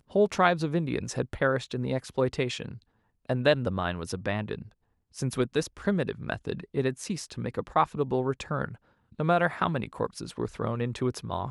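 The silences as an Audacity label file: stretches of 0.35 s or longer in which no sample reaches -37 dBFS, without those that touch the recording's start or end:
2.760000	3.290000	silence
4.620000	5.170000	silence
8.740000	9.190000	silence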